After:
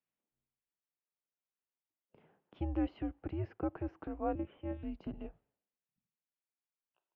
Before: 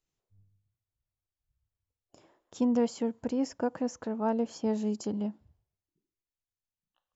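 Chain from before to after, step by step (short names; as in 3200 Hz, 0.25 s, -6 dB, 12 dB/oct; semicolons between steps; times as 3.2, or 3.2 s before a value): 4.35–4.83 monotone LPC vocoder at 8 kHz 250 Hz; mistuned SSB -170 Hz 300–3100 Hz; gain -4 dB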